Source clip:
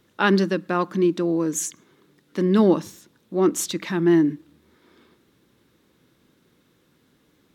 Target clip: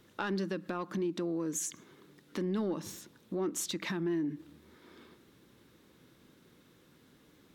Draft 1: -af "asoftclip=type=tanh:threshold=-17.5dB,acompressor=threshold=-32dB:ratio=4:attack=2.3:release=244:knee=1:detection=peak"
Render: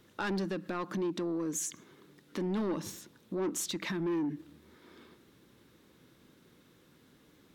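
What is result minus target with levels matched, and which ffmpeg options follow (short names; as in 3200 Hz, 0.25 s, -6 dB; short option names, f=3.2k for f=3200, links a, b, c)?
soft clip: distortion +12 dB
-af "asoftclip=type=tanh:threshold=-7.5dB,acompressor=threshold=-32dB:ratio=4:attack=2.3:release=244:knee=1:detection=peak"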